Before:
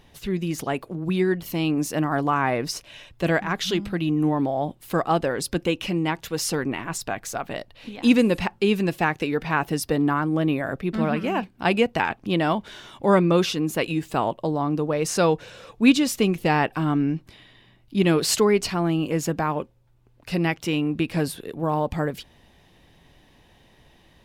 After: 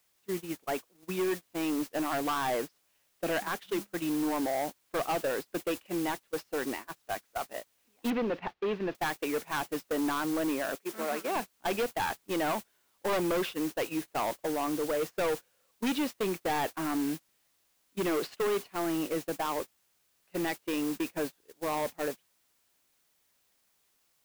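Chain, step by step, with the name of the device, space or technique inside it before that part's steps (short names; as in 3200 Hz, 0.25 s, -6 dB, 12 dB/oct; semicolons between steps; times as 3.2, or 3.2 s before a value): aircraft radio (BPF 340–2400 Hz; hard clip -24 dBFS, distortion -7 dB; white noise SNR 11 dB; gate -31 dBFS, range -28 dB); 8.1–8.95 air absorption 270 m; 10.75–11.36 HPF 320 Hz 12 dB/oct; gain -2.5 dB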